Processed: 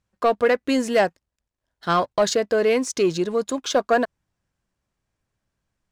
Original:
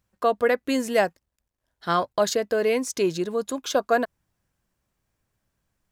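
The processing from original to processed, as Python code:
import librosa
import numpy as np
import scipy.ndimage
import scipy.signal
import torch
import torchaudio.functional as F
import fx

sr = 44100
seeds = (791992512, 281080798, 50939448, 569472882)

y = scipy.signal.sosfilt(scipy.signal.butter(2, 8200.0, 'lowpass', fs=sr, output='sos'), x)
y = fx.leveller(y, sr, passes=1)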